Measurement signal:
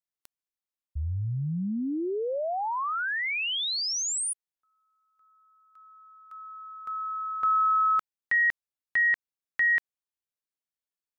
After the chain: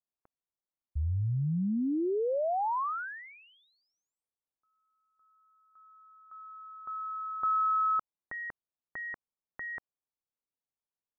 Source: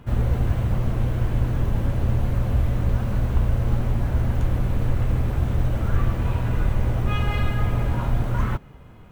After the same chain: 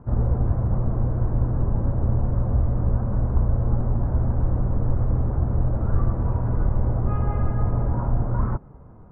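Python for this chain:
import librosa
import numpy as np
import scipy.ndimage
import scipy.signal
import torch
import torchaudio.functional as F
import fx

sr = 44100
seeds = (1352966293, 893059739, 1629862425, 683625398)

y = scipy.signal.sosfilt(scipy.signal.butter(4, 1200.0, 'lowpass', fs=sr, output='sos'), x)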